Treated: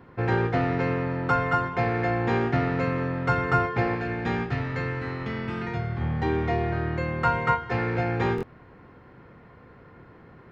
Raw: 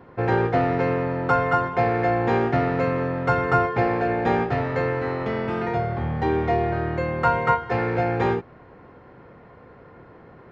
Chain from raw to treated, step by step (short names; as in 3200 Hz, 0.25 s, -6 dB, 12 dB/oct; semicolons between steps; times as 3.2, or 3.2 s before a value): bell 610 Hz -6.5 dB 1.6 oct, from 3.95 s -13 dB, from 6.01 s -6.5 dB; stuck buffer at 8.36, samples 1024, times 2